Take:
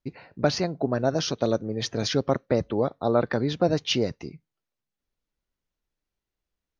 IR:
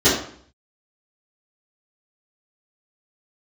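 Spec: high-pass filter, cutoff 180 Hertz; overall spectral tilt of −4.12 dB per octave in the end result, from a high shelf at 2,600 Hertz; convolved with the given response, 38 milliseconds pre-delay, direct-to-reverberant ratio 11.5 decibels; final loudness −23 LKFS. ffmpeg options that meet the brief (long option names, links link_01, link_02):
-filter_complex "[0:a]highpass=180,highshelf=frequency=2600:gain=4,asplit=2[link_01][link_02];[1:a]atrim=start_sample=2205,adelay=38[link_03];[link_02][link_03]afir=irnorm=-1:irlink=0,volume=-33.5dB[link_04];[link_01][link_04]amix=inputs=2:normalize=0,volume=2dB"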